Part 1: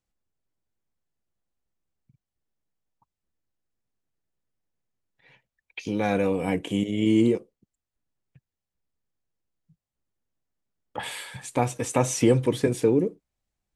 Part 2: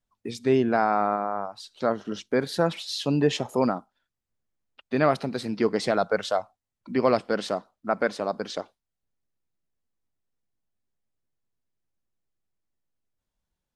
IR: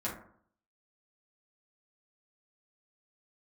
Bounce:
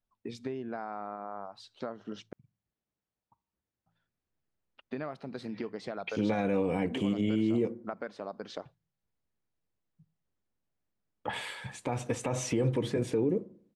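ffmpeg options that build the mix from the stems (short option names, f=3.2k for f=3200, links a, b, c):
-filter_complex "[0:a]highpass=48,adelay=300,volume=-1.5dB,asplit=2[a][b];[b]volume=-20dB[c];[1:a]bandreject=f=55.2:t=h:w=4,bandreject=f=110.4:t=h:w=4,bandreject=f=165.6:t=h:w=4,acompressor=threshold=-30dB:ratio=8,volume=-4.5dB,asplit=3[d][e][f];[d]atrim=end=2.33,asetpts=PTS-STARTPTS,afade=t=out:st=2.326:d=0.004:c=hsin[g];[e]atrim=start=2.33:end=3.86,asetpts=PTS-STARTPTS,volume=0[h];[f]atrim=start=3.86,asetpts=PTS-STARTPTS,afade=t=in:d=0.004:c=hsin[i];[g][h][i]concat=n=3:v=0:a=1[j];[2:a]atrim=start_sample=2205[k];[c][k]afir=irnorm=-1:irlink=0[l];[a][j][l]amix=inputs=3:normalize=0,aemphasis=mode=reproduction:type=50fm,alimiter=limit=-20dB:level=0:latency=1:release=72"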